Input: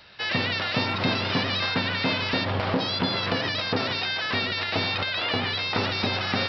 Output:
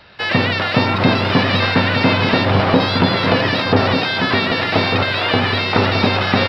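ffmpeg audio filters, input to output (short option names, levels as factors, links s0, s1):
-filter_complex "[0:a]aecho=1:1:1196:0.501,asplit=2[s0][s1];[s1]aeval=exprs='sgn(val(0))*max(abs(val(0))-0.0075,0)':c=same,volume=0.501[s2];[s0][s2]amix=inputs=2:normalize=0,highshelf=f=3000:g=-11,volume=2.66"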